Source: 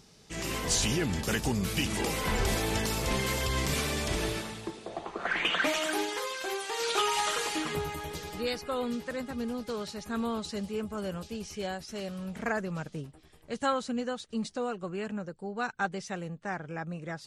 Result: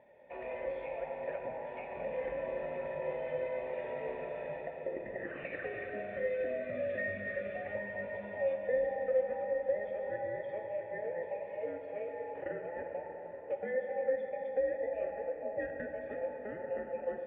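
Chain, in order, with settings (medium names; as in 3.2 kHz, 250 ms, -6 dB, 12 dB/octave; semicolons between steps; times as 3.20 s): every band turned upside down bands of 1 kHz; high-pass 46 Hz; bass shelf 490 Hz +9 dB; compression 6:1, threshold -34 dBFS, peak gain reduction 13.5 dB; cascade formant filter e; reverberation RT60 5.2 s, pre-delay 9 ms, DRR 2 dB; trim +7.5 dB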